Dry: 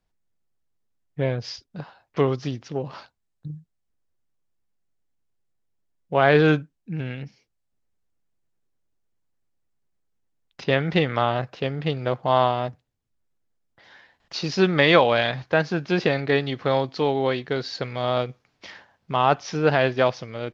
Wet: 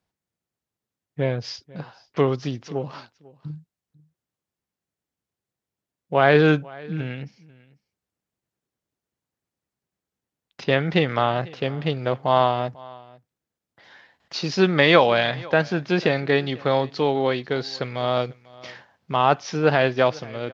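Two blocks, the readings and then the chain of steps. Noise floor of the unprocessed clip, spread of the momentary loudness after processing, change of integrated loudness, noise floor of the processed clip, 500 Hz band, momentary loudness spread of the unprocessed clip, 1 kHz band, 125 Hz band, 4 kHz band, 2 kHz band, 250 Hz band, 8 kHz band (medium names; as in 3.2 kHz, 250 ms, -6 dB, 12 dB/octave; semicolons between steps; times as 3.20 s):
-75 dBFS, 22 LU, +1.0 dB, under -85 dBFS, +1.0 dB, 18 LU, +1.0 dB, +0.5 dB, +1.0 dB, +1.0 dB, +1.0 dB, no reading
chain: high-pass 85 Hz; on a send: delay 495 ms -22.5 dB; on the sum: trim +1 dB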